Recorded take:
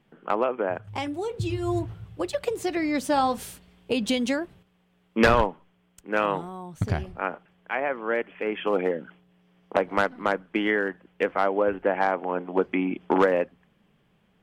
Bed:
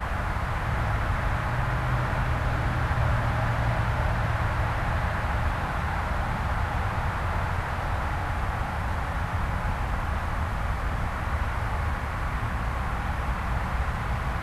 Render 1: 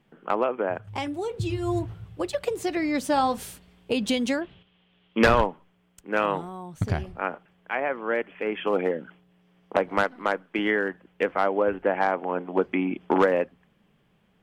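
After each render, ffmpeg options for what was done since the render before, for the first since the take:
-filter_complex "[0:a]asettb=1/sr,asplit=3[a][b][c];[a]atrim=end=4.414[d];[b]atrim=start=4.41:end=5.19,asetpts=PTS-STARTPTS,afade=t=in:d=0.004:c=qsin,afade=t=out:st=0.776:d=0.004:c=qsin,lowpass=f=3.2k:t=q:w=3.9[e];[c]atrim=start=5.186[f];[d][e]acrossfade=d=0.004:c1=hsin:c2=qsin[g];[g][f]acrossfade=d=0.004:c1=qsin:c2=hsin,asettb=1/sr,asplit=3[h][i][j];[h]atrim=end=10.034[k];[i]atrim=start=10.03:end=10.59,asetpts=PTS-STARTPTS,afade=t=in:d=0.004:c=qsin,afade=t=out:st=0.556:d=0.004:c=qsin,equalizer=f=67:w=0.43:g=-11[l];[j]atrim=start=10.586[m];[k][l]acrossfade=d=0.004:c1=hsin:c2=qsin[n];[n][m]acrossfade=d=0.004:c1=qsin:c2=hsin"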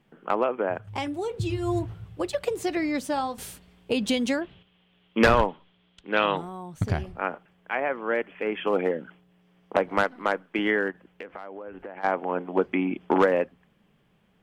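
-filter_complex "[0:a]asettb=1/sr,asplit=3[a][b][c];[a]atrim=end=5.484[d];[b]atrim=start=5.48:end=6.37,asetpts=PTS-STARTPTS,afade=t=in:d=0.004:c=qsin,afade=t=out:st=0.886:d=0.004:c=qsin,lowpass=f=3.6k:t=q:w=4.5[e];[c]atrim=start=6.366[f];[d][e]acrossfade=d=0.004:c1=hsin:c2=qsin[g];[g][f]acrossfade=d=0.004:c1=qsin:c2=hsin,asplit=3[h][i][j];[h]afade=t=out:st=10.9:d=0.02[k];[i]acompressor=threshold=-35dB:ratio=10:attack=3.2:release=140:knee=1:detection=peak,afade=t=in:st=10.9:d=0.02,afade=t=out:st=12.03:d=0.02[l];[j]afade=t=in:st=12.03:d=0.02[m];[k][l][m]amix=inputs=3:normalize=0,asplit=2[n][o];[n]atrim=end=3.38,asetpts=PTS-STARTPTS,afade=t=out:st=2.78:d=0.6:silence=0.334965[p];[o]atrim=start=3.38,asetpts=PTS-STARTPTS,afade=t=in:d=0.004:c=hsin:silence=0.334965[q];[p][q]concat=n=2:v=0:a=1"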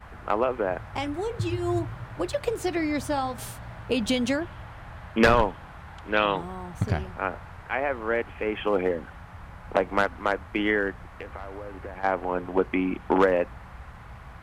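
-filter_complex "[1:a]volume=-15.5dB[a];[0:a][a]amix=inputs=2:normalize=0"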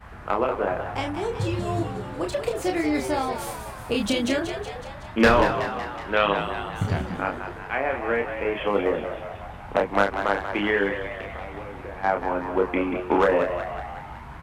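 -filter_complex "[0:a]asplit=2[a][b];[b]adelay=30,volume=-4dB[c];[a][c]amix=inputs=2:normalize=0,asplit=2[d][e];[e]asplit=7[f][g][h][i][j][k][l];[f]adelay=186,afreqshift=85,volume=-9dB[m];[g]adelay=372,afreqshift=170,volume=-13.4dB[n];[h]adelay=558,afreqshift=255,volume=-17.9dB[o];[i]adelay=744,afreqshift=340,volume=-22.3dB[p];[j]adelay=930,afreqshift=425,volume=-26.7dB[q];[k]adelay=1116,afreqshift=510,volume=-31.2dB[r];[l]adelay=1302,afreqshift=595,volume=-35.6dB[s];[m][n][o][p][q][r][s]amix=inputs=7:normalize=0[t];[d][t]amix=inputs=2:normalize=0"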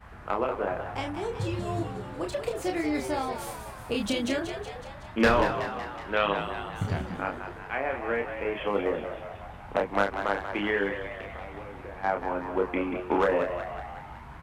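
-af "volume=-4.5dB"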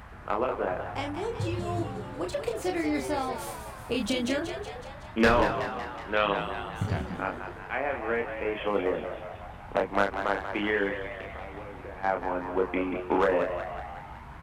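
-af "acompressor=mode=upward:threshold=-43dB:ratio=2.5"

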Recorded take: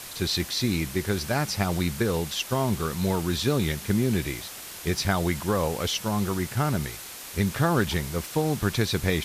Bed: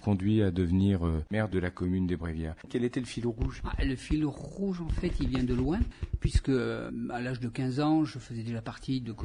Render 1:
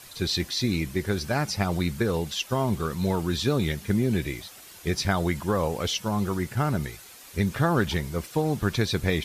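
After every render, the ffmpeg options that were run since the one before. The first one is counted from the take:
-af "afftdn=nr=9:nf=-40"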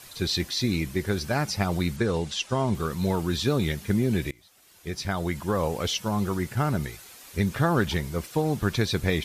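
-filter_complex "[0:a]asettb=1/sr,asplit=3[a][b][c];[a]atrim=end=1.964[d];[b]atrim=start=1.96:end=2.75,asetpts=PTS-STARTPTS,afade=t=in:d=0.004:c=qsin,afade=t=out:st=0.786:d=0.004:c=qsin,lowpass=f=9.4k:w=0.5412,lowpass=f=9.4k:w=1.3066[e];[c]atrim=start=2.746[f];[d][e]acrossfade=d=0.004:c1=hsin:c2=qsin[g];[g][f]acrossfade=d=0.004:c1=qsin:c2=hsin,asplit=2[h][i];[h]atrim=end=4.31,asetpts=PTS-STARTPTS,afade=t=out:st=4.306:d=0.004:c=hsin:silence=0.0668344[j];[i]atrim=start=4.31,asetpts=PTS-STARTPTS,afade=t=in:d=1.37:silence=0.0668344[k];[j][k]concat=n=2:v=0:a=1"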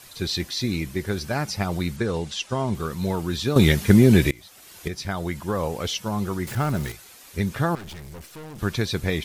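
-filter_complex "[0:a]asettb=1/sr,asplit=3[a][b][c];[a]atrim=end=6.474[d];[b]atrim=start=6.47:end=6.92,asetpts=PTS-STARTPTS,afade=t=in:d=0.004:c=qsin,afade=t=out:st=0.446:d=0.004:c=qsin,aeval=exprs='val(0)+0.5*0.0251*sgn(val(0))':c=same[e];[c]atrim=start=6.916[f];[d][e]acrossfade=d=0.004:c1=hsin:c2=qsin[g];[g][f]acrossfade=d=0.004:c1=qsin:c2=hsin,asettb=1/sr,asplit=3[h][i][j];[h]atrim=end=7.754[k];[i]atrim=start=7.75:end=8.59,asetpts=PTS-STARTPTS,afade=t=in:d=0.004:c=qsin,afade=t=out:st=0.836:d=0.004:c=qsin,aeval=exprs='(tanh(70.8*val(0)+0.55)-tanh(0.55))/70.8':c=same[l];[j]atrim=start=8.586[m];[k][l]acrossfade=d=0.004:c1=hsin:c2=qsin[n];[n][m]acrossfade=d=0.004:c1=qsin:c2=hsin,asplit=3[o][p][q];[o]atrim=end=3.562[r];[p]atrim=start=3.558:end=4.882,asetpts=PTS-STARTPTS,volume=10dB[s];[q]atrim=start=4.878[t];[r][s]acrossfade=d=0.004:c1=hsin:c2=hsin[u];[u][t]acrossfade=d=0.004:c1=hsin:c2=hsin"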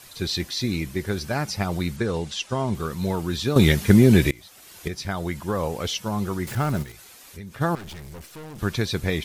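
-filter_complex "[0:a]asplit=3[a][b][c];[a]afade=t=out:st=6.82:d=0.02[d];[b]acompressor=threshold=-41dB:ratio=2.5:attack=3.2:release=140:knee=1:detection=peak,afade=t=in:st=6.82:d=0.02,afade=t=out:st=7.6:d=0.02[e];[c]afade=t=in:st=7.6:d=0.02[f];[d][e][f]amix=inputs=3:normalize=0"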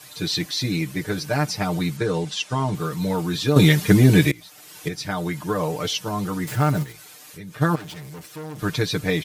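-af "highpass=85,aecho=1:1:6.6:0.91"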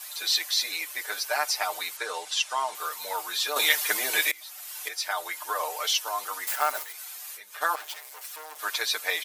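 -af "highpass=f=690:w=0.5412,highpass=f=690:w=1.3066,highshelf=f=11k:g=12"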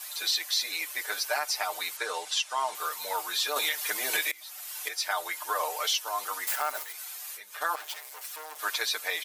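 -af "alimiter=limit=-16.5dB:level=0:latency=1:release=270"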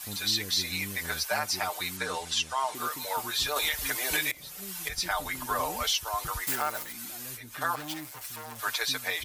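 -filter_complex "[1:a]volume=-15.5dB[a];[0:a][a]amix=inputs=2:normalize=0"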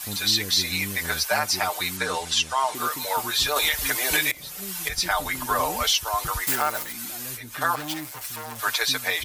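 -af "volume=6dB"

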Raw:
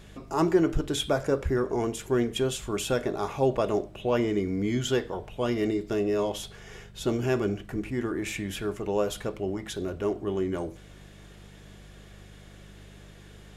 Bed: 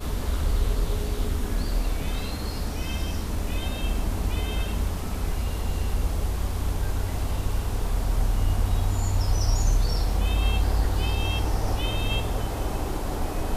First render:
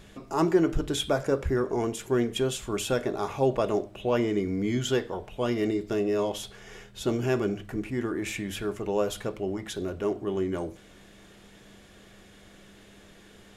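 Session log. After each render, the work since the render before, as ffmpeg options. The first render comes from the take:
-af "bandreject=f=50:t=h:w=4,bandreject=f=100:t=h:w=4,bandreject=f=150:t=h:w=4"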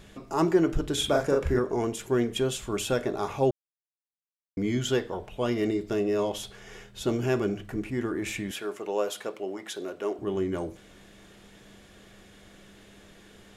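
-filter_complex "[0:a]asettb=1/sr,asplit=3[a][b][c];[a]atrim=end=0.944[d];[b]atrim=start=0.94:end=1.59,asetpts=PTS-STARTPTS,afade=t=in:d=0.004:c=qsin,afade=t=out:st=0.646:d=0.004:c=qsin,asplit=2[e][f];[f]adelay=41,volume=-2.5dB[g];[e][g]amix=inputs=2:normalize=0,atrim=end_sample=28665[h];[c]atrim=start=1.586[i];[d][h]acrossfade=d=0.004:c1=hsin:c2=qsin[j];[j][i]acrossfade=d=0.004:c1=qsin:c2=hsin,asettb=1/sr,asplit=3[k][l][m];[k]atrim=end=8.514[n];[l]atrim=start=8.51:end=10.19,asetpts=PTS-STARTPTS,afade=t=in:d=0.004:c=qsin,afade=t=out:st=1.676:d=0.004:c=qsin,highpass=360[o];[m]atrim=start=10.186[p];[n][o]acrossfade=d=0.004:c1=hsin:c2=qsin[q];[q][p]acrossfade=d=0.004:c1=qsin:c2=hsin,asplit=3[r][s][t];[r]atrim=end=3.51,asetpts=PTS-STARTPTS,afade=t=out:st=3.506:d=0.004:c=hsin[u];[s]atrim=start=3.51:end=4.57,asetpts=PTS-STARTPTS,volume=0[v];[t]atrim=start=4.57,asetpts=PTS-STARTPTS,afade=t=in:d=0.004:c=hsin[w];[u][v][w]concat=n=3:v=0:a=1"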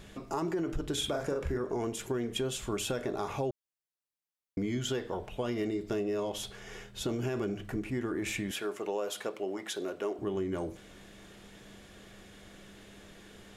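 -af "alimiter=limit=-18.5dB:level=0:latency=1:release=33,acompressor=threshold=-30dB:ratio=4"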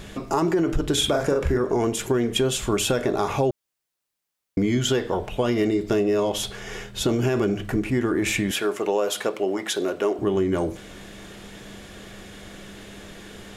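-af "volume=11dB"

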